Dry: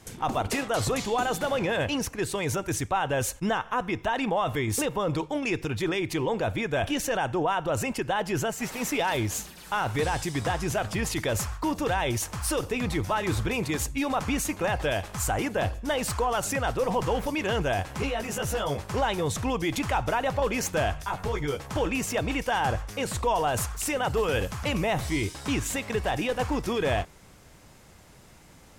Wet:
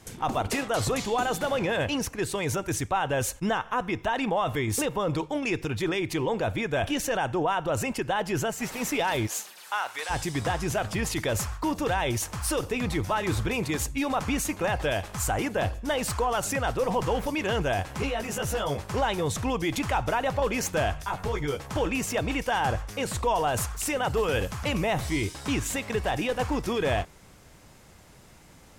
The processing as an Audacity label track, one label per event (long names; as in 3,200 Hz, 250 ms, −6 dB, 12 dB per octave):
9.260000	10.090000	high-pass filter 440 Hz → 1,100 Hz